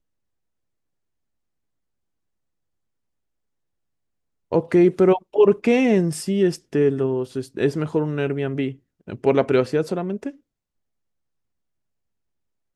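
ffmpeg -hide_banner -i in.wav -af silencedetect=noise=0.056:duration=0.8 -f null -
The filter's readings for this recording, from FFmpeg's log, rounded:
silence_start: 0.00
silence_end: 4.52 | silence_duration: 4.52
silence_start: 10.29
silence_end: 12.75 | silence_duration: 2.46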